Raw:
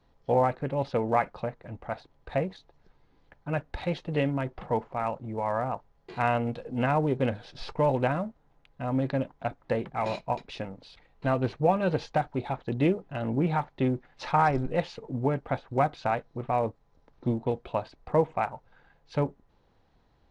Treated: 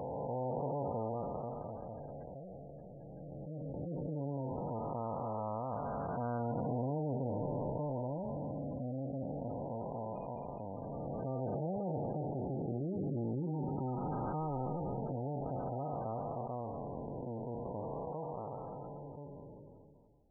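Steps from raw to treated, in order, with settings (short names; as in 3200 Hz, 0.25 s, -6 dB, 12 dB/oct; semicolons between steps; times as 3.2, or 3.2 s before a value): time blur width 1.02 s; reverb removal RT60 0.59 s; spectral gate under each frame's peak -15 dB strong; gain -1 dB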